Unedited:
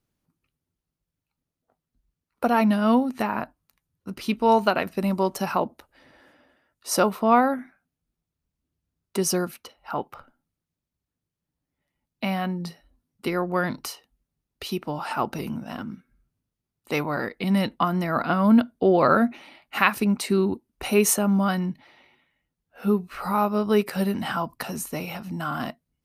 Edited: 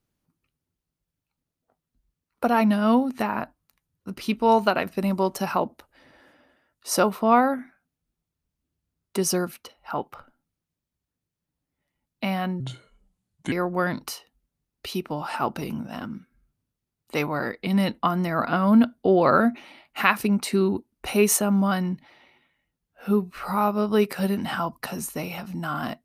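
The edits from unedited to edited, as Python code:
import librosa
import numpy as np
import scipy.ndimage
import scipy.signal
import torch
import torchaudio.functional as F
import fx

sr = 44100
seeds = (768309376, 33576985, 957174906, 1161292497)

y = fx.edit(x, sr, fx.speed_span(start_s=12.6, length_s=0.69, speed=0.75), tone=tone)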